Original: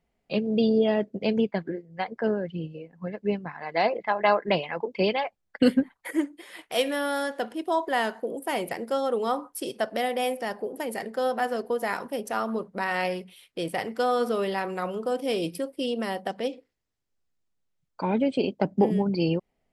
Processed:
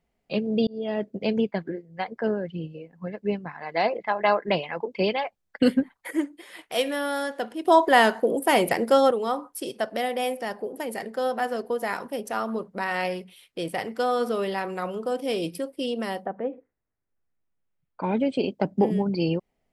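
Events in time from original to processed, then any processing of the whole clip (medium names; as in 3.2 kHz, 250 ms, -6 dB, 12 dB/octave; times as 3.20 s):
0.67–1.09 s: fade in
7.65–9.11 s: gain +8.5 dB
16.24–18.02 s: low-pass 1.5 kHz -> 3.2 kHz 24 dB/octave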